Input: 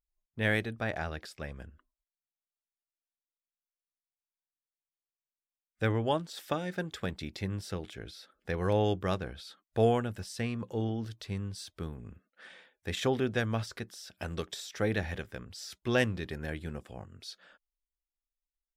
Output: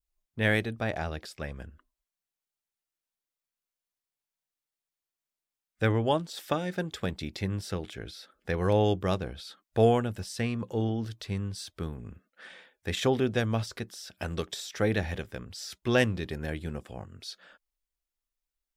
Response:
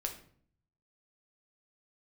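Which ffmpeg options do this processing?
-af "adynamicequalizer=threshold=0.00316:dfrequency=1600:dqfactor=1.5:tfrequency=1600:tqfactor=1.5:attack=5:release=100:ratio=0.375:range=3:mode=cutabove:tftype=bell,volume=3.5dB"

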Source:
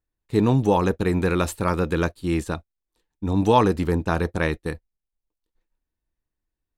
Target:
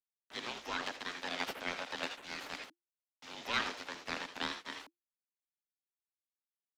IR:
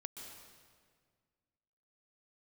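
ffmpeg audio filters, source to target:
-filter_complex "[0:a]aresample=16000,acrusher=bits=7:mix=0:aa=0.000001,aresample=44100,aderivative[link_01];[1:a]atrim=start_sample=2205,atrim=end_sample=6615,asetrate=74970,aresample=44100[link_02];[link_01][link_02]afir=irnorm=-1:irlink=0,areverse,acompressor=mode=upward:threshold=-51dB:ratio=2.5,areverse,aeval=exprs='abs(val(0))':channel_layout=same,highpass=47,afreqshift=-350,acrossover=split=320 4900:gain=0.126 1 0.0891[link_03][link_04][link_05];[link_03][link_04][link_05]amix=inputs=3:normalize=0,volume=18dB"

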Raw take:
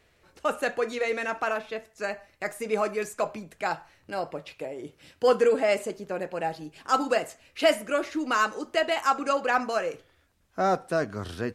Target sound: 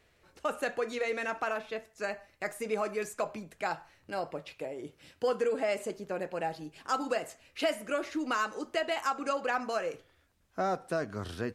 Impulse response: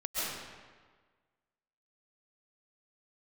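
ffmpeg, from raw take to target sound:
-af "acompressor=threshold=-25dB:ratio=2.5,volume=-3dB"

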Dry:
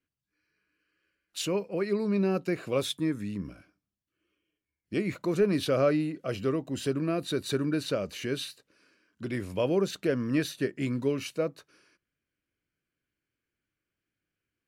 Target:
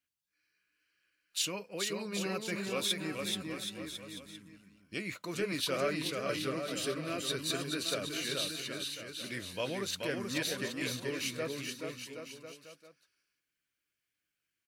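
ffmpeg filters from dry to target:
ffmpeg -i in.wav -af "tiltshelf=frequency=1200:gain=-7.5,aecho=1:1:430|774|1049|1269|1445:0.631|0.398|0.251|0.158|0.1,flanger=delay=1.1:depth=5.9:regen=-70:speed=1:shape=triangular,equalizer=frequency=380:width_type=o:width=0.21:gain=-2.5" out.wav

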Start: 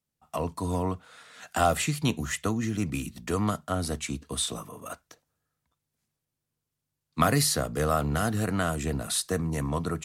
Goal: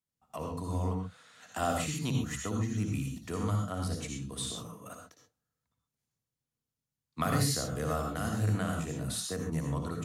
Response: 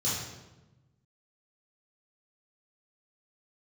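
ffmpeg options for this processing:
-filter_complex "[0:a]asplit=2[link_01][link_02];[1:a]atrim=start_sample=2205,atrim=end_sample=3969,adelay=57[link_03];[link_02][link_03]afir=irnorm=-1:irlink=0,volume=-9dB[link_04];[link_01][link_04]amix=inputs=2:normalize=0,volume=-9dB"

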